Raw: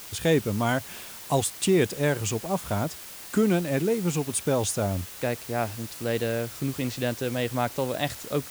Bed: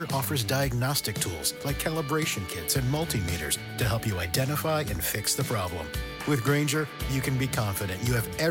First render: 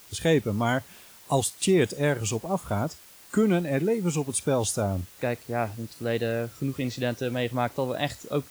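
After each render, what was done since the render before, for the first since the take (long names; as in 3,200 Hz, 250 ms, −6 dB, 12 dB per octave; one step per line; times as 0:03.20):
noise reduction from a noise print 9 dB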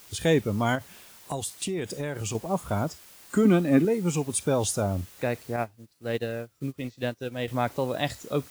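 0:00.75–0:02.35: downward compressor, threshold −27 dBFS
0:03.45–0:03.85: hollow resonant body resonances 260/1,200 Hz, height 12 dB
0:05.56–0:07.48: expander for the loud parts 2.5 to 1, over −38 dBFS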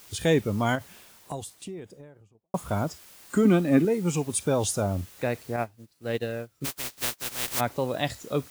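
0:00.75–0:02.54: fade out and dull
0:06.64–0:07.59: compressing power law on the bin magnitudes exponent 0.17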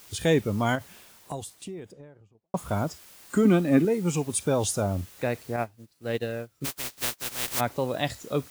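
0:01.92–0:02.57: high-frequency loss of the air 74 metres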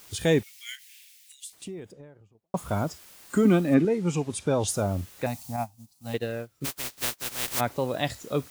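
0:00.43–0:01.53: Butterworth high-pass 2,000 Hz 48 dB per octave
0:03.74–0:04.68: high-frequency loss of the air 57 metres
0:05.26–0:06.14: drawn EQ curve 270 Hz 0 dB, 390 Hz −30 dB, 780 Hz +5 dB, 1,600 Hz −12 dB, 6,300 Hz +6 dB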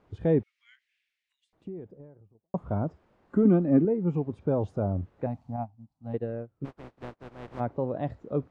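Bessel low-pass filter 630 Hz, order 2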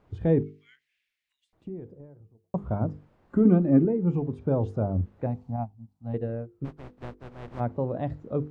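low-shelf EQ 160 Hz +7.5 dB
mains-hum notches 50/100/150/200/250/300/350/400/450/500 Hz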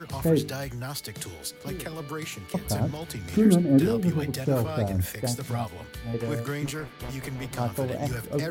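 mix in bed −7.5 dB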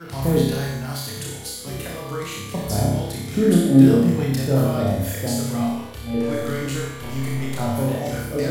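flutter between parallel walls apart 5.1 metres, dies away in 0.7 s
four-comb reverb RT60 0.59 s, combs from 30 ms, DRR 2.5 dB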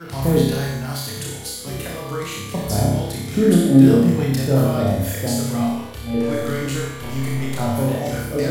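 level +2 dB
brickwall limiter −2 dBFS, peak gain reduction 2 dB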